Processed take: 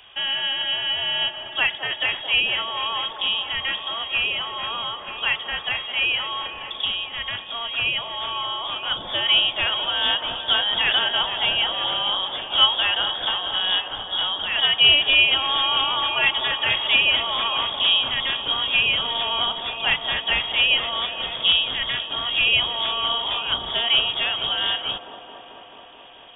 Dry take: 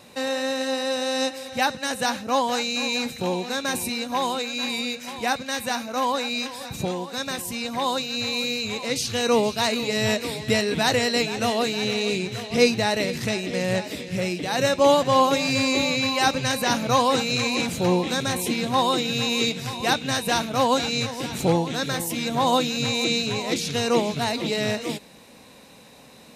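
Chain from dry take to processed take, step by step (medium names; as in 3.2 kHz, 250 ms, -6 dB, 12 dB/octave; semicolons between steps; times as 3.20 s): on a send at -20 dB: reverberation RT60 2.6 s, pre-delay 5 ms; on the sum: frequency inversion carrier 3.5 kHz; feedback echo behind a band-pass 218 ms, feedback 80%, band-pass 460 Hz, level -6 dB; trim +1.5 dB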